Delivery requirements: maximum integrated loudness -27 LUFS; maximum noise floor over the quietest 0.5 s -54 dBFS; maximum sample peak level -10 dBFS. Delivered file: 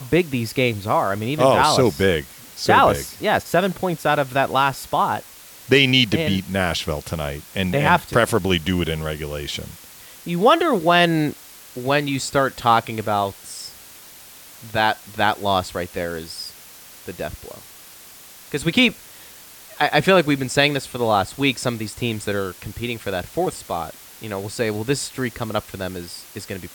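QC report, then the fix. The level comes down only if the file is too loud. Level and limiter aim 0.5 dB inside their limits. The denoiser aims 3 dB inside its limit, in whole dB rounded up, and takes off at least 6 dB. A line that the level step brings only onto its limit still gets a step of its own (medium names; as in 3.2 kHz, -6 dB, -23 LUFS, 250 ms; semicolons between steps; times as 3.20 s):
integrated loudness -20.5 LUFS: fail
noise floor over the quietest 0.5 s -43 dBFS: fail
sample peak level -3.5 dBFS: fail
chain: noise reduction 7 dB, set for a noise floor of -43 dBFS; trim -7 dB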